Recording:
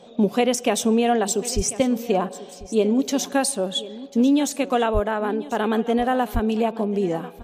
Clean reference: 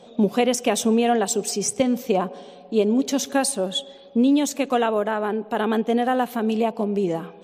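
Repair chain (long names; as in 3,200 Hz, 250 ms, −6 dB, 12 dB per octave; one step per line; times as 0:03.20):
0:01.55–0:01.67: high-pass filter 140 Hz 24 dB per octave
0:04.93–0:05.05: high-pass filter 140 Hz 24 dB per octave
0:06.33–0:06.45: high-pass filter 140 Hz 24 dB per octave
echo removal 1,043 ms −17 dB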